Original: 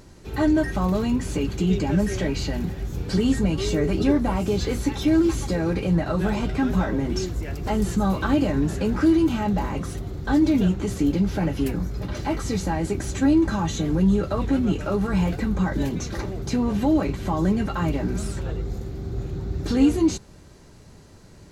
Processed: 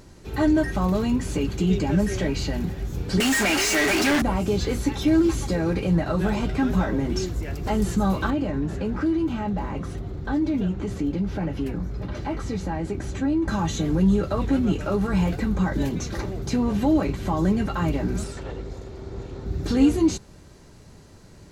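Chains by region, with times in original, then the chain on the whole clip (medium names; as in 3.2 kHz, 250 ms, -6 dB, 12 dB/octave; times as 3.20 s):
3.20–4.22 s: tilt shelf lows -8 dB, about 850 Hz + static phaser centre 720 Hz, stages 8 + overdrive pedal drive 36 dB, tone 4.9 kHz, clips at -14 dBFS
8.30–13.48 s: low-pass 2.8 kHz 6 dB/octave + compression 1.5:1, threshold -28 dBFS
18.24–19.46 s: comb filter that takes the minimum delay 2.2 ms + low-pass 7.9 kHz + bass shelf 170 Hz -7 dB
whole clip: none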